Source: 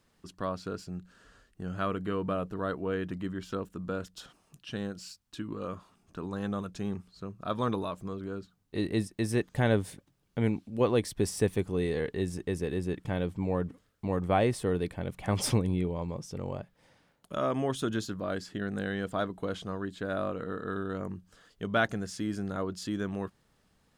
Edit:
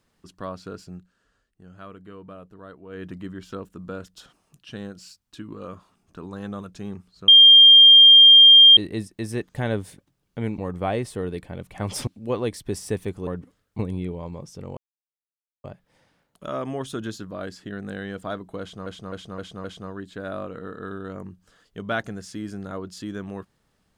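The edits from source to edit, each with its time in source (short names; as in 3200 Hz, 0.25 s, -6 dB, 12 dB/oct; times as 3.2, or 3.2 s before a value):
0.94–3.06 dip -10.5 dB, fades 0.17 s
7.28–8.77 bleep 3200 Hz -6.5 dBFS
11.78–13.54 cut
14.06–15.55 move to 10.58
16.53 insert silence 0.87 s
19.49–19.75 loop, 5 plays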